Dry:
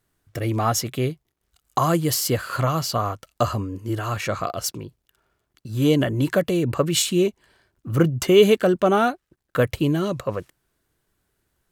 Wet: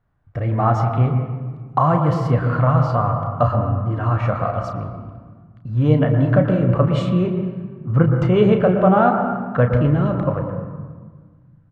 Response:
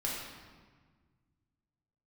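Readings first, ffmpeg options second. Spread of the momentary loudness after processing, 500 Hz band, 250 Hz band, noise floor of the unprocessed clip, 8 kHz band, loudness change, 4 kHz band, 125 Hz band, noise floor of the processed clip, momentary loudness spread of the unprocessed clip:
13 LU, +1.5 dB, +4.0 dB, -76 dBFS, under -25 dB, +3.5 dB, -12.0 dB, +9.0 dB, -50 dBFS, 11 LU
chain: -filter_complex "[0:a]lowpass=1.1k,equalizer=f=360:t=o:w=0.84:g=-13.5,asplit=2[a][b];[b]adelay=33,volume=-9dB[c];[a][c]amix=inputs=2:normalize=0,asplit=2[d][e];[1:a]atrim=start_sample=2205,lowpass=2.2k,adelay=116[f];[e][f]afir=irnorm=-1:irlink=0,volume=-8dB[g];[d][g]amix=inputs=2:normalize=0,volume=7dB"

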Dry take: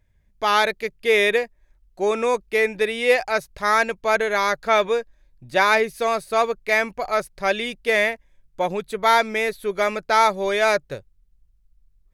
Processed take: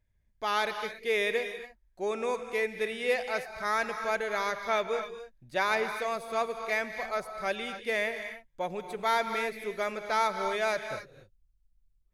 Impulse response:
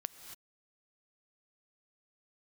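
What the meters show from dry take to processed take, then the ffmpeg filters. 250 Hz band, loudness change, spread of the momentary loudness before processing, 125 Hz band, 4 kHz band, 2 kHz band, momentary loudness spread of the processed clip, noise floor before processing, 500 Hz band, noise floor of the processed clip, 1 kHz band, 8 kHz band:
-10.0 dB, -10.0 dB, 8 LU, -10.0 dB, -10.0 dB, -10.0 dB, 8 LU, -61 dBFS, -10.0 dB, -69 dBFS, -10.0 dB, -10.0 dB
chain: -filter_complex "[1:a]atrim=start_sample=2205[a];[0:a][a]afir=irnorm=-1:irlink=0,volume=-8dB"

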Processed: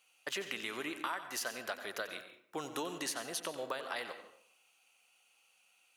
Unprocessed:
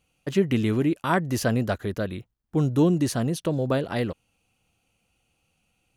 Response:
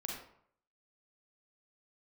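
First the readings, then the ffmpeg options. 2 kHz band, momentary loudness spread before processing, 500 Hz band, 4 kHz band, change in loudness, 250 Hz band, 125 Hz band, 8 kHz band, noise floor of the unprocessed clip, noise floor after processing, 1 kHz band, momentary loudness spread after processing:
-6.0 dB, 10 LU, -16.0 dB, -3.5 dB, -14.5 dB, -23.0 dB, -34.0 dB, -4.0 dB, -73 dBFS, -71 dBFS, -10.0 dB, 8 LU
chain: -filter_complex "[0:a]highpass=980,acompressor=threshold=-39dB:ratio=12,asplit=2[a][b];[1:a]atrim=start_sample=2205,adelay=91[c];[b][c]afir=irnorm=-1:irlink=0,volume=-9dB[d];[a][d]amix=inputs=2:normalize=0,volume=4dB"

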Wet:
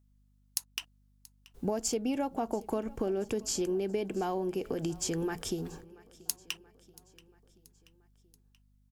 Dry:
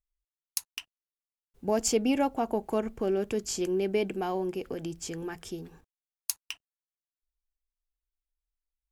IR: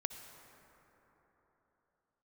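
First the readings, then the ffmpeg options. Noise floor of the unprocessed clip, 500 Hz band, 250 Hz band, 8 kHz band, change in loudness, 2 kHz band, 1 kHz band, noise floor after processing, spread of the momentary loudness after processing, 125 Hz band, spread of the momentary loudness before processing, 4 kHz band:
under -85 dBFS, -3.5 dB, -2.5 dB, -1.0 dB, -3.0 dB, -3.5 dB, -3.5 dB, -67 dBFS, 9 LU, +1.0 dB, 15 LU, -1.0 dB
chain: -filter_complex "[0:a]equalizer=f=2.3k:w=1.5:g=-4,acompressor=threshold=-37dB:ratio=6,aeval=exprs='val(0)+0.000224*(sin(2*PI*50*n/s)+sin(2*PI*2*50*n/s)/2+sin(2*PI*3*50*n/s)/3+sin(2*PI*4*50*n/s)/4+sin(2*PI*5*50*n/s)/5)':c=same,asplit=2[a][b];[b]aecho=0:1:681|1362|2043|2724:0.0794|0.0445|0.0249|0.0139[c];[a][c]amix=inputs=2:normalize=0,volume=7.5dB"

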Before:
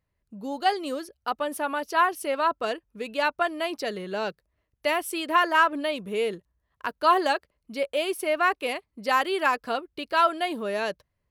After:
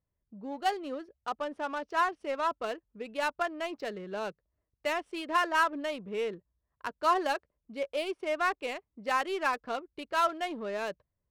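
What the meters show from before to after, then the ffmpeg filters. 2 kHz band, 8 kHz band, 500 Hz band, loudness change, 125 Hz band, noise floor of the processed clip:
-6.5 dB, -7.5 dB, -6.0 dB, -6.0 dB, n/a, -85 dBFS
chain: -af "aresample=22050,aresample=44100,adynamicsmooth=sensitivity=4.5:basefreq=1.5k,volume=-6dB"

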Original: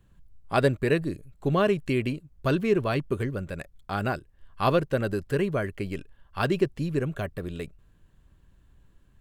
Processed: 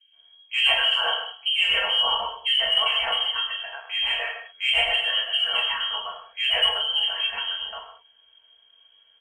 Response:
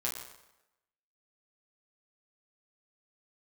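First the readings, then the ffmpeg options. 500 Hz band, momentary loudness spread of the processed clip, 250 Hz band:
-10.0 dB, 10 LU, under -30 dB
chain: -filter_complex "[0:a]lowpass=f=2.8k:t=q:w=0.5098,lowpass=f=2.8k:t=q:w=0.6013,lowpass=f=2.8k:t=q:w=0.9,lowpass=f=2.8k:t=q:w=2.563,afreqshift=-3300,lowshelf=f=170:g=12,aecho=1:1:4.4:0.59,asplit=2[a][b];[b]asoftclip=type=tanh:threshold=-15.5dB,volume=-10dB[c];[a][c]amix=inputs=2:normalize=0,equalizer=f=125:t=o:w=1:g=-4,equalizer=f=250:t=o:w=1:g=-11,equalizer=f=500:t=o:w=1:g=6,equalizer=f=1k:t=o:w=1:g=7,acrossover=split=2200[d][e];[d]adelay=130[f];[f][e]amix=inputs=2:normalize=0[g];[1:a]atrim=start_sample=2205,afade=t=out:st=0.31:d=0.01,atrim=end_sample=14112,asetrate=48510,aresample=44100[h];[g][h]afir=irnorm=-1:irlink=0,volume=-2dB"

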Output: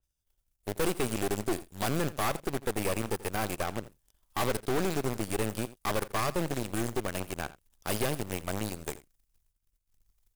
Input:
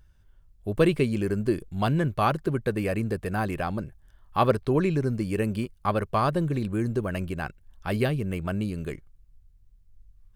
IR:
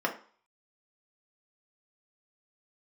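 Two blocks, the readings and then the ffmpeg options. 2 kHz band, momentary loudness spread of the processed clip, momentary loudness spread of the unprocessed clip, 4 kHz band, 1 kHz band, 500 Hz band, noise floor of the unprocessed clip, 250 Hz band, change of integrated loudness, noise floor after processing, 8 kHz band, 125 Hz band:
-2.5 dB, 9 LU, 10 LU, +2.0 dB, -5.5 dB, -5.5 dB, -58 dBFS, -7.5 dB, -5.5 dB, -79 dBFS, +11.5 dB, -9.5 dB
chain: -filter_complex "[0:a]bandreject=f=4.2k:w=5.4,agate=range=-9dB:threshold=-54dB:ratio=16:detection=peak,acrossover=split=2200[a][b];[a]adynamicsmooth=sensitivity=2:basefreq=1.2k[c];[c][b]amix=inputs=2:normalize=0,bass=f=250:g=-9,treble=f=4k:g=15,acrossover=split=290|3000[d][e][f];[d]acompressor=threshold=-32dB:ratio=1.5[g];[g][e][f]amix=inputs=3:normalize=0,aeval=exprs='(tanh(17.8*val(0)+0.4)-tanh(0.4))/17.8':c=same,acrusher=bits=2:mode=log:mix=0:aa=0.000001,aeval=exprs='0.0596*(cos(1*acos(clip(val(0)/0.0596,-1,1)))-cos(1*PI/2))+0.0075*(cos(2*acos(clip(val(0)/0.0596,-1,1)))-cos(2*PI/2))+0.015*(cos(3*acos(clip(val(0)/0.0596,-1,1)))-cos(3*PI/2))+0.00266*(cos(8*acos(clip(val(0)/0.0596,-1,1)))-cos(8*PI/2))':c=same,asplit=2[h][i];[i]aecho=0:1:84:0.133[j];[h][j]amix=inputs=2:normalize=0,adynamicequalizer=threshold=0.00316:dfrequency=3300:dqfactor=0.7:tfrequency=3300:tqfactor=0.7:attack=5:release=100:ratio=0.375:range=2:mode=cutabove:tftype=highshelf,volume=3.5dB"

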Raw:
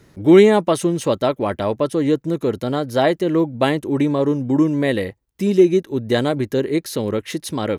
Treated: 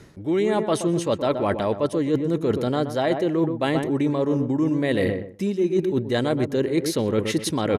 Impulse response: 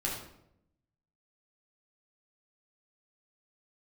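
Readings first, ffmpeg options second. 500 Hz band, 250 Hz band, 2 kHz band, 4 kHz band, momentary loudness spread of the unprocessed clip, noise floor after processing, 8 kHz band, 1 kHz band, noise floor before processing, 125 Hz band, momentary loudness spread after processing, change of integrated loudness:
-5.0 dB, -4.5 dB, -4.5 dB, -3.5 dB, 10 LU, -38 dBFS, n/a, -4.0 dB, -57 dBFS, -3.0 dB, 2 LU, -5.0 dB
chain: -filter_complex "[0:a]lowpass=11k,asplit=2[a][b];[b]adelay=125,lowpass=f=1.3k:p=1,volume=-9.5dB,asplit=2[c][d];[d]adelay=125,lowpass=f=1.3k:p=1,volume=0.3,asplit=2[e][f];[f]adelay=125,lowpass=f=1.3k:p=1,volume=0.3[g];[a][c][e][g]amix=inputs=4:normalize=0,areverse,acompressor=threshold=-24dB:ratio=12,areverse,volume=5.5dB"

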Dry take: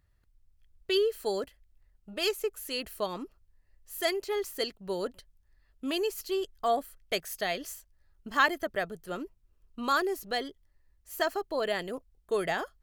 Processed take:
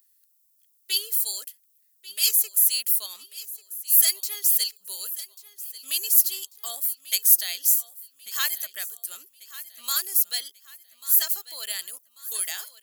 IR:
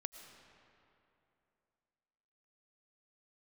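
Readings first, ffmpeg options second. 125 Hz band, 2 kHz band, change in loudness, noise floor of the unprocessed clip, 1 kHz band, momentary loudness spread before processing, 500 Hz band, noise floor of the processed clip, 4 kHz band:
under -30 dB, -4.0 dB, +10.5 dB, -68 dBFS, -13.0 dB, 15 LU, under -20 dB, -65 dBFS, +7.5 dB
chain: -af "aderivative,crystalizer=i=8.5:c=0,aecho=1:1:1141|2282|3423:0.141|0.0579|0.0237,volume=-1dB"

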